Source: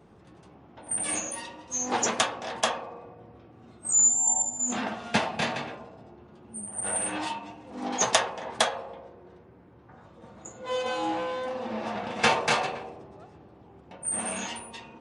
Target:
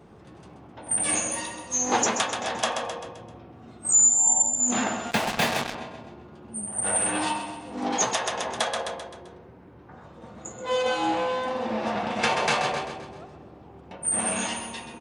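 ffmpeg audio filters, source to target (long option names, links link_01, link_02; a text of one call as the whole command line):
ffmpeg -i in.wav -filter_complex "[0:a]aecho=1:1:130|260|390|520|650:0.316|0.149|0.0699|0.0328|0.0154,asettb=1/sr,asplit=3[link_01][link_02][link_03];[link_01]atrim=end=5.114[link_04];[link_02]atrim=start=5.11:end=5.75,asetpts=PTS-STARTPTS,afade=type=in:duration=0.004:curve=qsin,afade=type=out:start_time=0.636:duration=0.004:curve=qsin,acrusher=bits=4:mix=0:aa=0.5[link_05];[link_03]atrim=start=5.746[link_06];[link_04][link_05]acrossfade=duration=0.004:curve1=hsin:curve2=qsin[link_07];[link_07][link_06]acrossfade=duration=0.004:curve1=qsin:curve2=hsin,alimiter=limit=-15.5dB:level=0:latency=1:release=238,volume=4.5dB" out.wav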